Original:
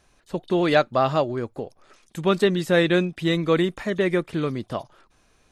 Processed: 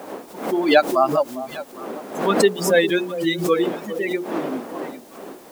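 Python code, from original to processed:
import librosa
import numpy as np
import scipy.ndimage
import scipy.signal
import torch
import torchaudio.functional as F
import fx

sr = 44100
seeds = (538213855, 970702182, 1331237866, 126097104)

p1 = fx.bin_expand(x, sr, power=3.0)
p2 = fx.dmg_wind(p1, sr, seeds[0], corner_hz=530.0, level_db=-39.0)
p3 = scipy.signal.sosfilt(scipy.signal.butter(4, 230.0, 'highpass', fs=sr, output='sos'), p2)
p4 = fx.hum_notches(p3, sr, base_hz=60, count=8)
p5 = fx.echo_alternate(p4, sr, ms=403, hz=890.0, feedback_pct=51, wet_db=-12)
p6 = fx.quant_dither(p5, sr, seeds[1], bits=8, dither='triangular')
p7 = p5 + (p6 * librosa.db_to_amplitude(-7.5))
p8 = fx.pre_swell(p7, sr, db_per_s=99.0)
y = p8 * librosa.db_to_amplitude(4.0)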